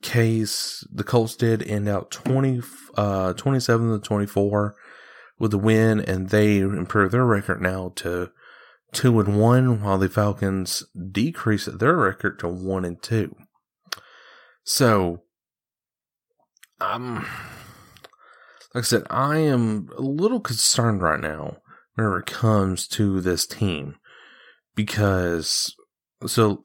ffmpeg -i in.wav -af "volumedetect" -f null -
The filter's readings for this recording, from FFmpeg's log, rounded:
mean_volume: -22.9 dB
max_volume: -3.4 dB